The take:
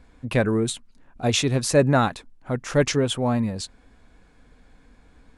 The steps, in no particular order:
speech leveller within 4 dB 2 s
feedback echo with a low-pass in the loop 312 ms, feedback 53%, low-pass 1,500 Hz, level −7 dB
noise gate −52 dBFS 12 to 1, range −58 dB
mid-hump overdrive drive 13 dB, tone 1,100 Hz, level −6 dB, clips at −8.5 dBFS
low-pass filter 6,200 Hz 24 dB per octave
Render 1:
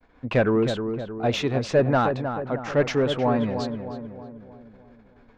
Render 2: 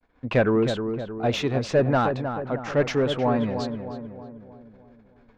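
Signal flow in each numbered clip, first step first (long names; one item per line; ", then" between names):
low-pass filter, then speech leveller, then mid-hump overdrive, then noise gate, then feedback echo with a low-pass in the loop
low-pass filter, then mid-hump overdrive, then noise gate, then speech leveller, then feedback echo with a low-pass in the loop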